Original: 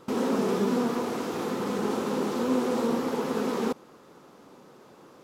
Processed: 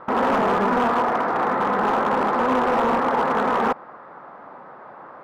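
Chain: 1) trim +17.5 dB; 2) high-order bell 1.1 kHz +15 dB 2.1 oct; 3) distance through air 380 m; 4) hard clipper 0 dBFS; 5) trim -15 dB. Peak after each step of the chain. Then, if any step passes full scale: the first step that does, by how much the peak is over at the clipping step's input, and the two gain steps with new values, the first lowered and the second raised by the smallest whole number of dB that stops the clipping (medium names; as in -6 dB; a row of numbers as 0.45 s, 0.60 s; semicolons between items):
+4.0 dBFS, +9.5 dBFS, +8.0 dBFS, 0.0 dBFS, -15.0 dBFS; step 1, 8.0 dB; step 1 +9.5 dB, step 5 -7 dB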